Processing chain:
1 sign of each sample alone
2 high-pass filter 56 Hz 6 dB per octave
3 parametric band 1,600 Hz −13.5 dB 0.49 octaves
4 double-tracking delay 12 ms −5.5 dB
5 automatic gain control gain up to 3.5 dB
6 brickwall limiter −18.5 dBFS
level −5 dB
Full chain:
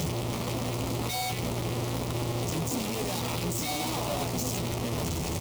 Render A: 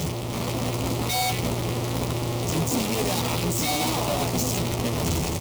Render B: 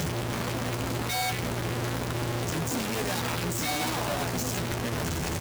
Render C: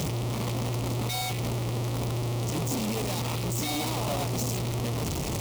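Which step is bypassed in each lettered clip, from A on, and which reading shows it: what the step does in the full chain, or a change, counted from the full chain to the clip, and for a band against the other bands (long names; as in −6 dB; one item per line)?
6, average gain reduction 5.0 dB
3, 2 kHz band +5.5 dB
4, 125 Hz band +3.5 dB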